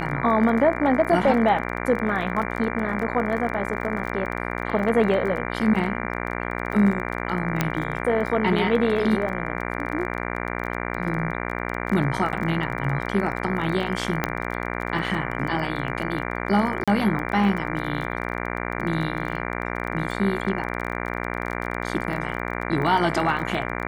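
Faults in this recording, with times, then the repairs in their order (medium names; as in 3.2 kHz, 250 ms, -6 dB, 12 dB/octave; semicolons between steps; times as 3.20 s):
buzz 60 Hz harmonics 39 -29 dBFS
crackle 22 per s -30 dBFS
7.61 s: pop -6 dBFS
14.24 s: pop -7 dBFS
16.84–16.88 s: dropout 36 ms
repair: de-click; de-hum 60 Hz, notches 39; interpolate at 16.84 s, 36 ms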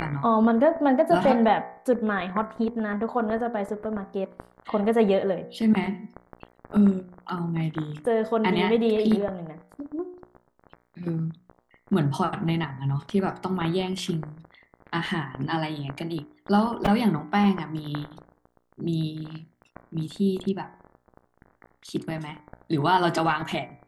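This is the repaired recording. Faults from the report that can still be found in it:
nothing left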